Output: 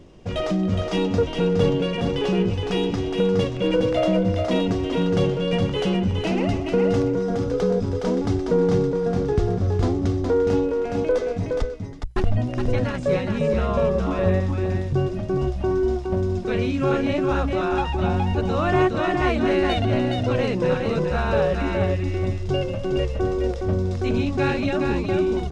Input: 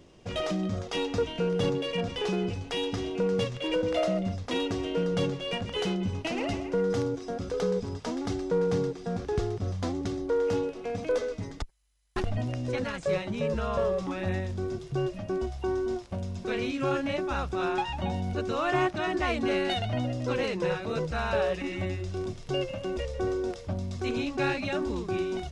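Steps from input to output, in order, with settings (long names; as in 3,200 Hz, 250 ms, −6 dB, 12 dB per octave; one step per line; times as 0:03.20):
spectral tilt −1.5 dB per octave
mains-hum notches 60/120 Hz
single-tap delay 416 ms −4.5 dB
level +4.5 dB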